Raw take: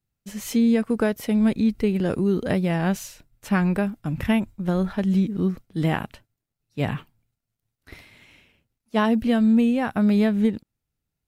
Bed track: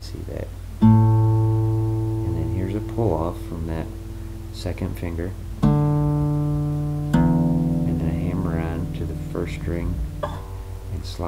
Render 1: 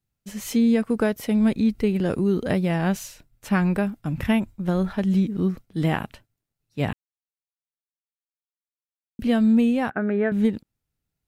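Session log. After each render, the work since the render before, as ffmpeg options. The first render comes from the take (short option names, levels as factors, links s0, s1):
-filter_complex "[0:a]asettb=1/sr,asplit=3[s0][s1][s2];[s0]atrim=end=9.904[s3];[s1]atrim=start=9.9:end=10.32,asetpts=PTS-STARTPTS,afade=t=in:d=0.004:c=qsin,afade=t=out:st=0.416:d=0.004:c=qsin,highpass=210,equalizer=f=220:t=q:w=4:g=-5,equalizer=f=390:t=q:w=4:g=5,equalizer=f=1000:t=q:w=4:g=-8,equalizer=f=1600:t=q:w=4:g=9,lowpass=f=2100:w=0.5412,lowpass=f=2100:w=1.3066[s4];[s2]atrim=start=10.316[s5];[s3][s4]acrossfade=d=0.004:c1=hsin:c2=qsin[s6];[s6][s5]acrossfade=d=0.004:c1=qsin:c2=hsin,asplit=3[s7][s8][s9];[s7]atrim=end=6.93,asetpts=PTS-STARTPTS,afade=t=out:st=6.926:d=0.004:c=hsin[s10];[s8]atrim=start=6.93:end=9.19,asetpts=PTS-STARTPTS,volume=0[s11];[s9]atrim=start=9.19,asetpts=PTS-STARTPTS,afade=t=in:d=0.004:c=hsin[s12];[s10][s11][s12]concat=n=3:v=0:a=1"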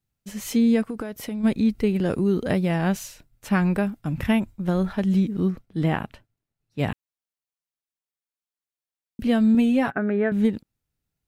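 -filter_complex "[0:a]asplit=3[s0][s1][s2];[s0]afade=t=out:st=0.88:d=0.02[s3];[s1]acompressor=threshold=0.0501:ratio=12:attack=3.2:release=140:knee=1:detection=peak,afade=t=in:st=0.88:d=0.02,afade=t=out:st=1.43:d=0.02[s4];[s2]afade=t=in:st=1.43:d=0.02[s5];[s3][s4][s5]amix=inputs=3:normalize=0,asettb=1/sr,asplit=3[s6][s7][s8];[s6]atrim=end=5.504[s9];[s7]atrim=start=5.5:end=6.79,asetpts=PTS-STARTPTS,afade=t=in:d=0.004:c=qsin,afade=t=out:st=1.286:d=0.004:c=qsin,highshelf=f=4100:g=-8[s10];[s8]atrim=start=6.786[s11];[s9][s10]acrossfade=d=0.004:c1=hsin:c2=qsin[s12];[s12][s11]acrossfade=d=0.004:c1=qsin:c2=hsin,asettb=1/sr,asplit=3[s13][s14][s15];[s13]atrim=end=9.544[s16];[s14]atrim=start=9.54:end=9.98,asetpts=PTS-STARTPTS,afade=t=in:d=0.004:c=qsin,afade=t=out:st=0.436:d=0.004:c=qsin,aecho=1:1:7.2:0.65,atrim=end_sample=19404[s17];[s15]atrim=start=9.976[s18];[s16][s17]acrossfade=d=0.004:c1=hsin:c2=qsin[s19];[s19][s18]acrossfade=d=0.004:c1=qsin:c2=hsin"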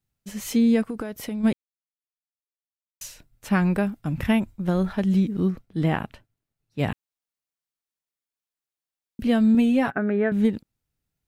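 -filter_complex "[0:a]asplit=3[s0][s1][s2];[s0]atrim=end=1.53,asetpts=PTS-STARTPTS,afade=t=out:st=1.526:d=0.004:c=hsin[s3];[s1]atrim=start=1.53:end=3.01,asetpts=PTS-STARTPTS,volume=0[s4];[s2]atrim=start=3.01,asetpts=PTS-STARTPTS,afade=t=in:d=0.004:c=hsin[s5];[s3][s4][s5]concat=n=3:v=0:a=1"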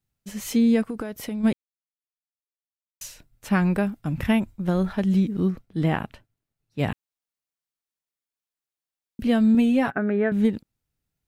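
-af anull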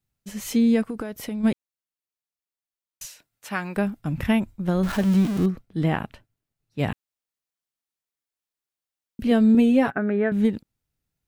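-filter_complex "[0:a]asettb=1/sr,asplit=3[s0][s1][s2];[s0]atrim=end=3.054[s3];[s1]atrim=start=3.05:end=3.77,asetpts=PTS-STARTPTS,afade=t=in:d=0.004:c=qsin,afade=t=out:st=0.716:d=0.004:c=qsin,highpass=f=810:p=1[s4];[s2]atrim=start=3.766[s5];[s3][s4]acrossfade=d=0.004:c1=hsin:c2=qsin[s6];[s6][s5]acrossfade=d=0.004:c1=qsin:c2=hsin,asettb=1/sr,asplit=3[s7][s8][s9];[s7]atrim=end=4.834[s10];[s8]atrim=start=4.83:end=5.46,asetpts=PTS-STARTPTS,afade=t=in:d=0.004:c=qsin,afade=t=out:st=0.626:d=0.004:c=qsin,aeval=exprs='val(0)+0.5*0.0447*sgn(val(0))':c=same[s11];[s9]atrim=start=5.456[s12];[s10][s11]acrossfade=d=0.004:c1=hsin:c2=qsin[s13];[s13][s12]acrossfade=d=0.004:c1=qsin:c2=hsin,asettb=1/sr,asplit=3[s14][s15][s16];[s14]atrim=end=9.314[s17];[s15]atrim=start=9.31:end=9.87,asetpts=PTS-STARTPTS,afade=t=in:d=0.004:c=qsin,afade=t=out:st=0.556:d=0.004:c=qsin,equalizer=f=400:t=o:w=0.77:g=8[s18];[s16]atrim=start=9.866[s19];[s17][s18]acrossfade=d=0.004:c1=hsin:c2=qsin[s20];[s20][s19]acrossfade=d=0.004:c1=qsin:c2=hsin"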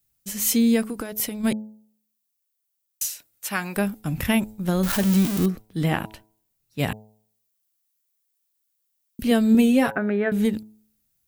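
-af "aemphasis=mode=production:type=75kf,bandreject=f=107.7:t=h:w=4,bandreject=f=215.4:t=h:w=4,bandreject=f=323.1:t=h:w=4,bandreject=f=430.8:t=h:w=4,bandreject=f=538.5:t=h:w=4,bandreject=f=646.2:t=h:w=4,bandreject=f=753.9:t=h:w=4,bandreject=f=861.6:t=h:w=4,bandreject=f=969.3:t=h:w=4"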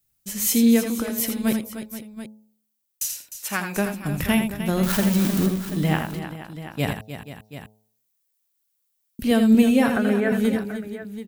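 -af "aecho=1:1:82|305|480|733:0.422|0.282|0.188|0.211"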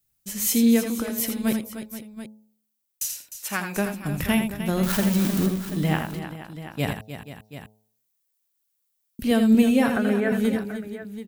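-af "volume=0.841"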